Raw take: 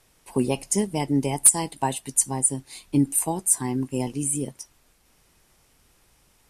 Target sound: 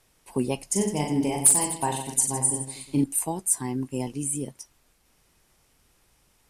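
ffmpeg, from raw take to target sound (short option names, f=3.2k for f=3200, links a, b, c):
-filter_complex "[0:a]asettb=1/sr,asplit=3[a][b][c];[a]atrim=end=0.674[d];[b]atrim=start=0.67:end=3.04,asetpts=PTS-STARTPTS,afade=t=in:d=0.004:c=qsin,afade=t=out:st=2.366:d=0.004:c=qsin,aecho=1:1:40|92|159.6|247.5|361.7:0.631|0.398|0.251|0.158|0.1,atrim=end_sample=104517[e];[c]atrim=start=3.036[f];[d][e]acrossfade=d=0.004:c1=hsin:c2=qsin[g];[g][f]acrossfade=d=0.004:c1=qsin:c2=hsin,volume=-3dB"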